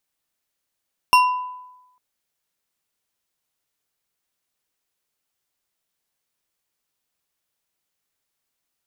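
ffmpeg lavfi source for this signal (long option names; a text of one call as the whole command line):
ffmpeg -f lavfi -i "aevalsrc='0.355*pow(10,-3*t/0.98)*sin(2*PI*1000*t)+0.2*pow(10,-3*t/0.482)*sin(2*PI*2757*t)+0.112*pow(10,-3*t/0.301)*sin(2*PI*5404*t)+0.0631*pow(10,-3*t/0.212)*sin(2*PI*8933*t)+0.0355*pow(10,-3*t/0.16)*sin(2*PI*13340*t)':duration=0.85:sample_rate=44100" out.wav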